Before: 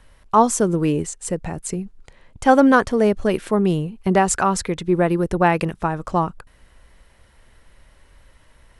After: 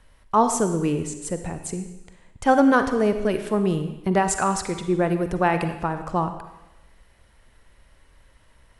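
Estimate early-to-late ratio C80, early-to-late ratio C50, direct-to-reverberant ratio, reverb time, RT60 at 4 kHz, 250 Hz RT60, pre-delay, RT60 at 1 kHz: 10.5 dB, 8.5 dB, 8.0 dB, 0.95 s, 0.95 s, 0.95 s, 39 ms, 0.95 s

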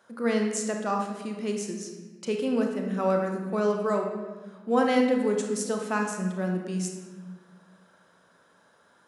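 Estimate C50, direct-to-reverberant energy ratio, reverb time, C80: 4.0 dB, 2.0 dB, 1.3 s, 6.0 dB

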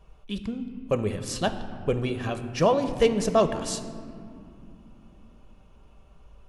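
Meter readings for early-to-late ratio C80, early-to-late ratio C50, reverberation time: 11.5 dB, 10.5 dB, 2.5 s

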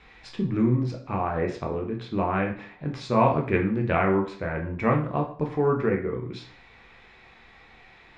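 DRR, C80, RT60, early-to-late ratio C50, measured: 1.0 dB, 13.5 dB, 0.55 s, 8.5 dB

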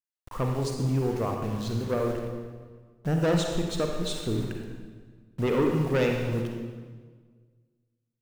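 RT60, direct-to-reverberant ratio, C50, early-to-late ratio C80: 1.6 s, 2.0 dB, 3.0 dB, 4.5 dB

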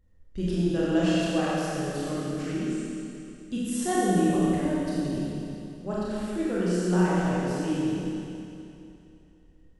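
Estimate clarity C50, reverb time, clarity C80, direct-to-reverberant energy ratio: -5.0 dB, 2.8 s, -3.5 dB, -8.5 dB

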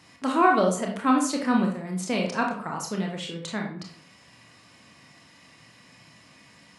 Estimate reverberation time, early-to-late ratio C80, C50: 0.50 s, 10.0 dB, 5.5 dB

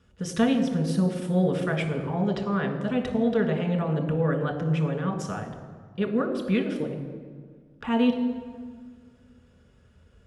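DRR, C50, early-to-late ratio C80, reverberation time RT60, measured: 3.0 dB, 8.0 dB, 9.5 dB, 1.7 s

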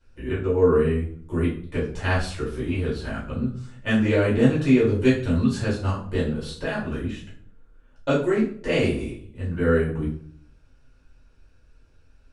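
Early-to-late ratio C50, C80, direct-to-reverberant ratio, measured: 5.5 dB, 10.5 dB, -9.0 dB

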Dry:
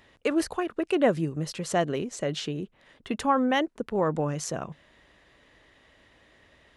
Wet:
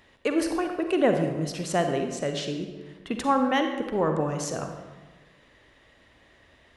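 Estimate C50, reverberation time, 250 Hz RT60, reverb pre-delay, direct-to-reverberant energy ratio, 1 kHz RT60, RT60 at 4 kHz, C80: 5.5 dB, 1.2 s, 1.4 s, 39 ms, 5.0 dB, 1.2 s, 0.90 s, 7.5 dB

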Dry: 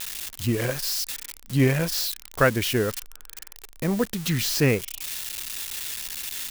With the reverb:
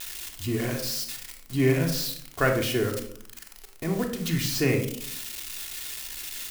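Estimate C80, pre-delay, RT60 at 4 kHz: 11.0 dB, 3 ms, 0.40 s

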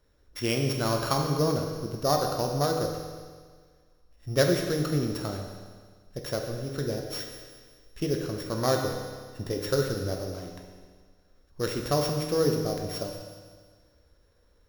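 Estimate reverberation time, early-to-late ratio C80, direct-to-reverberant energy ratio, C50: 1.7 s, 5.5 dB, 2.0 dB, 4.0 dB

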